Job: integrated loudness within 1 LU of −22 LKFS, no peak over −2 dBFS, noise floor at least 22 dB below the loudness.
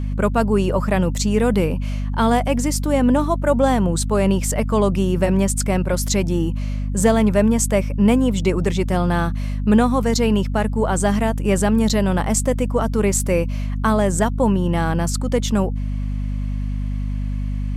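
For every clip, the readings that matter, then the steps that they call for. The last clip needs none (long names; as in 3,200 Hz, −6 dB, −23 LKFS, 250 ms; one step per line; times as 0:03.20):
mains hum 50 Hz; hum harmonics up to 250 Hz; level of the hum −20 dBFS; integrated loudness −19.5 LKFS; sample peak −3.5 dBFS; target loudness −22.0 LKFS
→ hum removal 50 Hz, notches 5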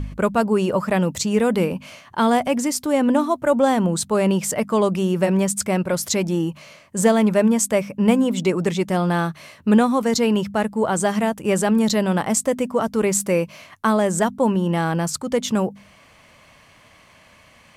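mains hum none found; integrated loudness −20.0 LKFS; sample peak −3.5 dBFS; target loudness −22.0 LKFS
→ level −2 dB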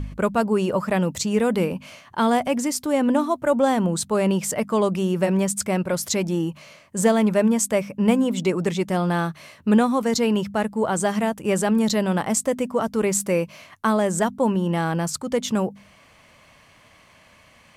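integrated loudness −22.0 LKFS; sample peak −5.5 dBFS; background noise floor −53 dBFS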